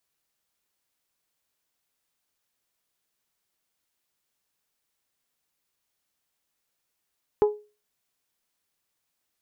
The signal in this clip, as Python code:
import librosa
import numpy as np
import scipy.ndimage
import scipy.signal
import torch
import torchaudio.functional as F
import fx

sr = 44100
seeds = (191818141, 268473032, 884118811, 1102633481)

y = fx.strike_glass(sr, length_s=0.89, level_db=-13.0, body='bell', hz=419.0, decay_s=0.32, tilt_db=10, modes=5)